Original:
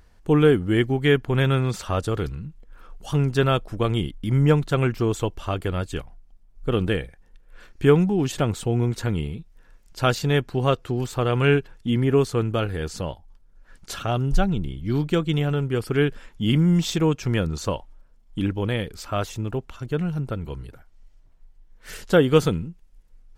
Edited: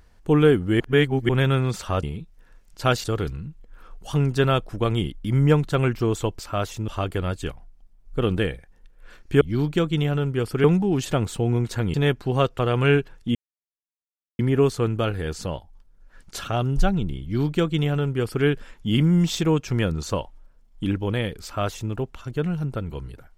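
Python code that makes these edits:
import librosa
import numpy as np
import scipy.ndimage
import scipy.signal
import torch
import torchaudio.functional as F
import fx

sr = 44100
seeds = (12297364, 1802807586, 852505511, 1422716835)

y = fx.edit(x, sr, fx.reverse_span(start_s=0.8, length_s=0.49),
    fx.move(start_s=9.21, length_s=1.01, to_s=2.03),
    fx.cut(start_s=10.87, length_s=0.31),
    fx.insert_silence(at_s=11.94, length_s=1.04),
    fx.duplicate(start_s=14.77, length_s=1.23, to_s=7.91),
    fx.duplicate(start_s=18.98, length_s=0.49, to_s=5.38), tone=tone)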